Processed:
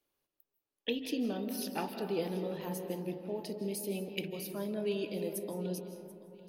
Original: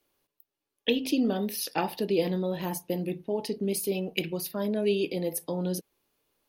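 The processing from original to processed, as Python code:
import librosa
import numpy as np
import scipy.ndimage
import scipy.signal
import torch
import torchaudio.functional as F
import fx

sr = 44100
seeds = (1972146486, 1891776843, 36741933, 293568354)

y = fx.echo_feedback(x, sr, ms=736, feedback_pct=37, wet_db=-19.0)
y = fx.rev_freeverb(y, sr, rt60_s=2.5, hf_ratio=0.25, predelay_ms=120, drr_db=7.0)
y = F.gain(torch.from_numpy(y), -8.5).numpy()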